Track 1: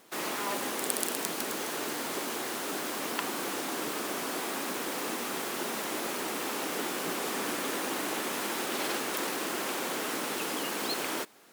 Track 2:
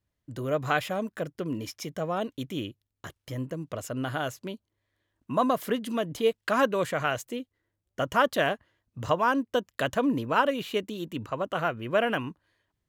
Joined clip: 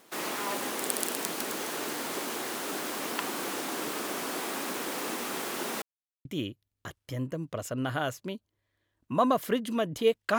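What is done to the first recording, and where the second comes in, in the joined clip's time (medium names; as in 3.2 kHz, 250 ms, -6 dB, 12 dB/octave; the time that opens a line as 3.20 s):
track 1
5.82–6.25 s: mute
6.25 s: go over to track 2 from 2.44 s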